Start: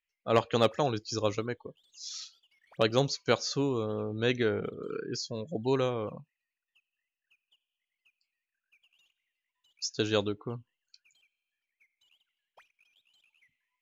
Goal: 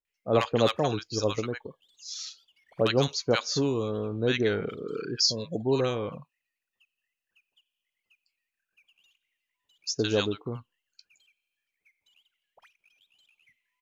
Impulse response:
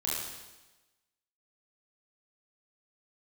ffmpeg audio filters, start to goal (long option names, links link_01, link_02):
-filter_complex "[0:a]asettb=1/sr,asplit=3[link_01][link_02][link_03];[link_01]atrim=end=4.614[link_04];[link_02]atrim=start=4.61:end=5.38,asetpts=PTS-STARTPTS,afade=type=in:duration=0.004:curve=qsin,afade=type=out:start_time=0.766:duration=0.004:curve=qsin,equalizer=frequency=5100:width=1.7:gain=12.5[link_05];[link_03]atrim=start=5.376[link_06];[link_04][link_05]acrossfade=duration=0.004:curve1=hsin:curve2=qsin[link_07];[link_07][link_06]acrossfade=duration=0.004:curve1=qsin:curve2=hsin,acrossover=split=960[link_08][link_09];[link_09]adelay=50[link_10];[link_08][link_10]amix=inputs=2:normalize=0,volume=3dB"